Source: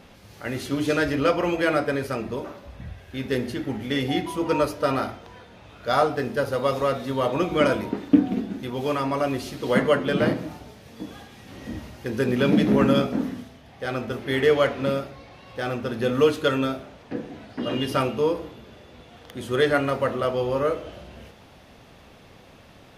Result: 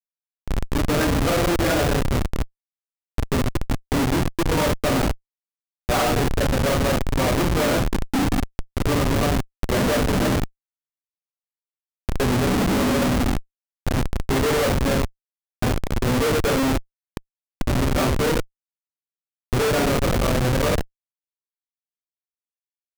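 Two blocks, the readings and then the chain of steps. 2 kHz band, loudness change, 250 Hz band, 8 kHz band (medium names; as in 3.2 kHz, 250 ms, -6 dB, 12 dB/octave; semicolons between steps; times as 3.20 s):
+2.0 dB, +2.0 dB, +1.5 dB, +13.5 dB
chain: two-slope reverb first 0.46 s, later 1.8 s, from -18 dB, DRR -6 dB; Schmitt trigger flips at -16 dBFS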